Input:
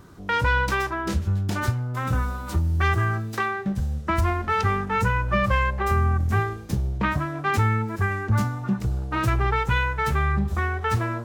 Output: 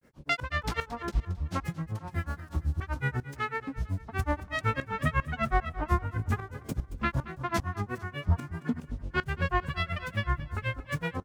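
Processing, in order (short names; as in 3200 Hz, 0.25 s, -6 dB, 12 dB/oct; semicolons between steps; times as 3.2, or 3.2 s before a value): grains 0.124 s, grains 8/s, spray 11 ms, pitch spread up and down by 7 st; tremolo saw up 2.5 Hz, depth 85%; on a send: feedback echo 0.225 s, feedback 43%, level -15.5 dB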